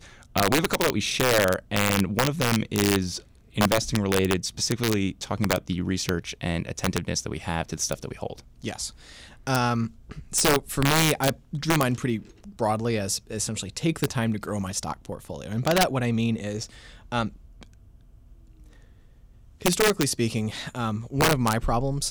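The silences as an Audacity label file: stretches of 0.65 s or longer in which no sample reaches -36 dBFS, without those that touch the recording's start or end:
17.630000	19.610000	silence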